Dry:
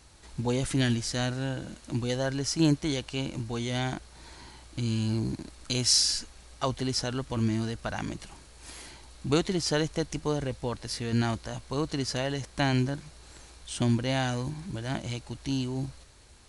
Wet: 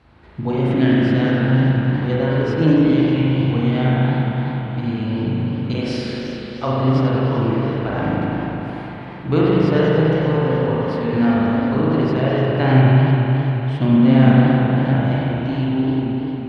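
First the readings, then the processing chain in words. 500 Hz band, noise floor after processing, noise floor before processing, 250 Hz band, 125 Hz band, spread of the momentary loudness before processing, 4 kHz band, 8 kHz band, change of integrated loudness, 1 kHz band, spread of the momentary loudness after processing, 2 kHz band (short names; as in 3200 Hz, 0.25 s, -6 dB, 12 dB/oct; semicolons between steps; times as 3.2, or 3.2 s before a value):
+13.0 dB, -30 dBFS, -53 dBFS, +14.5 dB, +14.5 dB, 16 LU, -1.5 dB, under -20 dB, +12.0 dB, +12.5 dB, 10 LU, +10.5 dB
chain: HPF 74 Hz; air absorption 420 m; spring tank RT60 3.7 s, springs 38 ms, chirp 65 ms, DRR -7 dB; warbling echo 99 ms, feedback 80%, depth 214 cents, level -11 dB; gain +5.5 dB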